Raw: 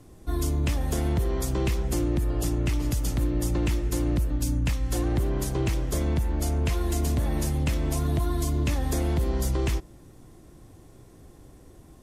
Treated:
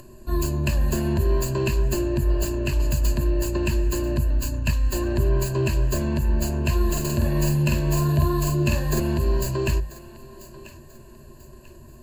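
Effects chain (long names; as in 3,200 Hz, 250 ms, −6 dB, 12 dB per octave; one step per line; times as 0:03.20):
stylus tracing distortion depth 0.055 ms
EQ curve with evenly spaced ripples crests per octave 1.4, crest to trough 17 dB
upward compression, threshold −41 dBFS
0:06.85–0:09.00: double-tracking delay 48 ms −3 dB
feedback echo with a high-pass in the loop 990 ms, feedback 36%, high-pass 420 Hz, level −16 dB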